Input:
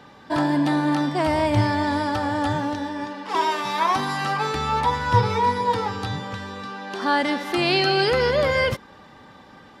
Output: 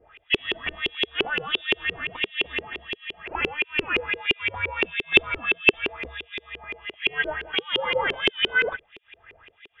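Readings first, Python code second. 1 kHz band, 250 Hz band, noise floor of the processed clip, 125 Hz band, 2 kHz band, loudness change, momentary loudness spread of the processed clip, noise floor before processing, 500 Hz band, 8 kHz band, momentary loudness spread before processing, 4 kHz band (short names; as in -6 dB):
-13.5 dB, -12.0 dB, -61 dBFS, -18.0 dB, +3.5 dB, -2.0 dB, 15 LU, -48 dBFS, -7.0 dB, under -15 dB, 10 LU, +2.5 dB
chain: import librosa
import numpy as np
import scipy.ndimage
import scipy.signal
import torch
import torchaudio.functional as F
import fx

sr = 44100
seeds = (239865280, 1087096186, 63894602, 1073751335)

y = fx.freq_invert(x, sr, carrier_hz=3600)
y = fx.harmonic_tremolo(y, sr, hz=1.5, depth_pct=100, crossover_hz=2200.0)
y = fx.filter_lfo_lowpass(y, sr, shape='saw_up', hz=5.8, low_hz=370.0, high_hz=2700.0, q=5.4)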